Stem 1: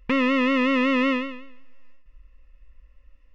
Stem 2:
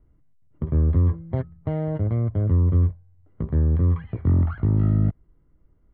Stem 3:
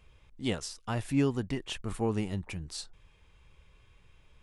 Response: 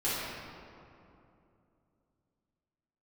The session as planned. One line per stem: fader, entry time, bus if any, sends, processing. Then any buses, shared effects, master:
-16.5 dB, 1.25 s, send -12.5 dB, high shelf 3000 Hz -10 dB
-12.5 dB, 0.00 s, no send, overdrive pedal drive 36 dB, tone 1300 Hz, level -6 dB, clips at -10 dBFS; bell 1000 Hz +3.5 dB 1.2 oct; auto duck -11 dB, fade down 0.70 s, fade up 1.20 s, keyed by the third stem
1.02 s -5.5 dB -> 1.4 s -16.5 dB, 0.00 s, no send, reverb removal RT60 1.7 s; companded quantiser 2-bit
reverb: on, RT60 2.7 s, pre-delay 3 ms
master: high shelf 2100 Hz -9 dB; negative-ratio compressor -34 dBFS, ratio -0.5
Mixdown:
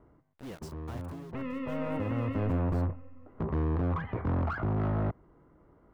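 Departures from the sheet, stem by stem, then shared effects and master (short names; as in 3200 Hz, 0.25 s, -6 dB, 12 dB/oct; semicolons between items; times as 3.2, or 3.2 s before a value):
stem 3 -5.5 dB -> -14.0 dB; master: missing negative-ratio compressor -34 dBFS, ratio -0.5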